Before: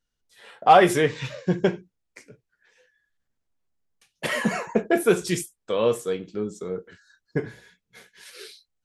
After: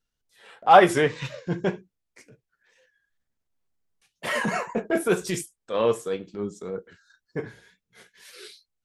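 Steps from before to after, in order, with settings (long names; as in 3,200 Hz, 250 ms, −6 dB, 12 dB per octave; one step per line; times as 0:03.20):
tape wow and flutter 57 cents
dynamic equaliser 1,000 Hz, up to +4 dB, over −36 dBFS, Q 0.88
transient designer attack −8 dB, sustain −3 dB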